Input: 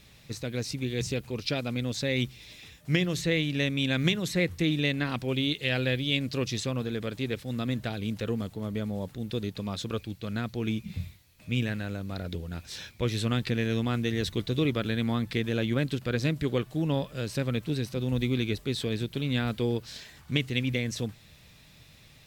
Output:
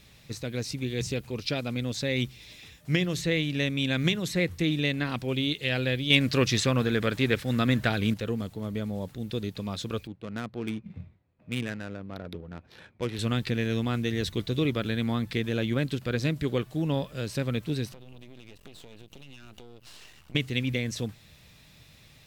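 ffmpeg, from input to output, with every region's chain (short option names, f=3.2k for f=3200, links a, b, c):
-filter_complex "[0:a]asettb=1/sr,asplit=3[a][b][c];[a]atrim=end=6.104[d];[b]atrim=start=6.1:end=8.14,asetpts=PTS-STARTPTS,afade=t=in:d=0.004:c=qsin,afade=t=out:st=2.036:d=0.004:c=qsin,equalizer=f=1.6k:w=1.2:g=6.5,acontrast=43,asoftclip=type=hard:threshold=-7.5dB[e];[c]atrim=start=8.136[f];[d][e]acrossfade=d=0.004:c1=hsin:c2=qsin[g];[g][f]acrossfade=d=0.004:c1=qsin:c2=hsin,asettb=1/sr,asplit=3[h][i][j];[h]atrim=end=10.074[k];[i]atrim=start=10.07:end=13.19,asetpts=PTS-STARTPTS,afade=t=in:d=0.004:c=qsin,afade=t=out:st=3.116:d=0.004:c=qsin,highpass=f=210:p=1,highshelf=f=9.1k:g=-8.5,adynamicsmooth=sensitivity=7:basefreq=870[l];[j]atrim=start=13.186[m];[k][l]acrossfade=d=0.004:c1=hsin:c2=qsin[n];[n][m]acrossfade=d=0.004:c1=qsin:c2=hsin,asettb=1/sr,asplit=3[o][p][q];[o]atrim=end=17.924[r];[p]atrim=start=17.92:end=20.35,asetpts=PTS-STARTPTS,afade=t=in:d=0.004:c=qsin,afade=t=out:st=2.426:d=0.004:c=qsin,equalizer=f=2.8k:w=7.7:g=13.5,aeval=exprs='max(val(0),0)':c=same,acompressor=threshold=-42dB:ratio=16:attack=3.2:release=140:knee=1:detection=peak[s];[q]atrim=start=20.346[t];[r][s]acrossfade=d=0.004:c1=hsin:c2=qsin[u];[u][t]acrossfade=d=0.004:c1=qsin:c2=hsin"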